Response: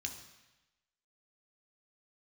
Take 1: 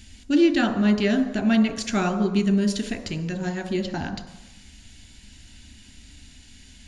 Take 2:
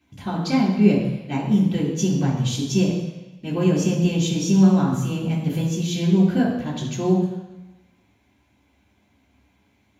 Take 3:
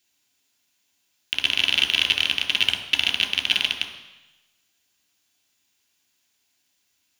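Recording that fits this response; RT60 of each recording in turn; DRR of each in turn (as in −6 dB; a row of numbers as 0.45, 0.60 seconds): 3; 1.0, 1.0, 1.0 seconds; 8.0, −7.0, 2.5 decibels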